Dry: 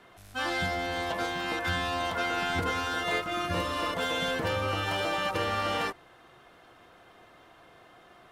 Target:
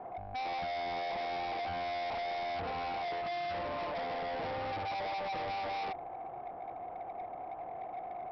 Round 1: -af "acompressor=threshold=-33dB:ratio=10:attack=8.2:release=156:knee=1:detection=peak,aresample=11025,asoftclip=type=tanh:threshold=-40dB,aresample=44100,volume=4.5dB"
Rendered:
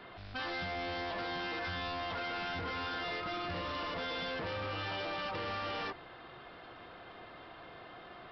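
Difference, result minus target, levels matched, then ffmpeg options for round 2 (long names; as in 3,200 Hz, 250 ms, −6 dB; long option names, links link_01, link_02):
1,000 Hz band −5.0 dB
-af "acompressor=threshold=-33dB:ratio=10:attack=8.2:release=156:knee=1:detection=peak,lowpass=frequency=760:width_type=q:width=8.8,aresample=11025,asoftclip=type=tanh:threshold=-40dB,aresample=44100,volume=4.5dB"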